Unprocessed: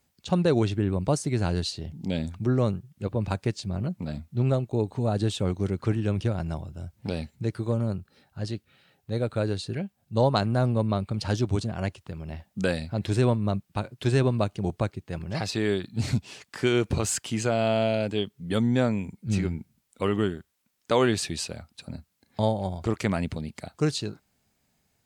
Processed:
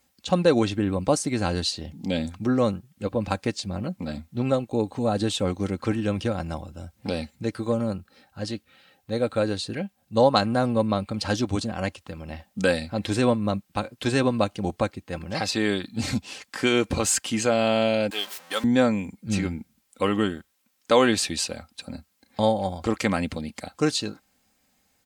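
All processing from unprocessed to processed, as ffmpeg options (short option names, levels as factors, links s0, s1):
-filter_complex "[0:a]asettb=1/sr,asplit=3[s0][s1][s2];[s0]atrim=end=18.104[s3];[s1]atrim=start=18.1:end=18.64,asetpts=PTS-STARTPTS,afade=t=in:d=0.004:c=qsin,afade=t=out:st=0.536:d=0.004:c=qsin,aeval=exprs='val(0)+0.5*0.0211*sgn(val(0))':c=same,highpass=720,agate=range=0.0224:threshold=0.00631:ratio=3:release=100:detection=peak[s4];[s2]atrim=start=18.636[s5];[s3][s4]acrossfade=d=0.004:c1=hsin:c2=qsin[s6];[s6][s5]acrossfade=d=0.004:c1=qsin:c2=hsin,lowshelf=f=270:g=-6,aecho=1:1:3.8:0.48,volume=1.68"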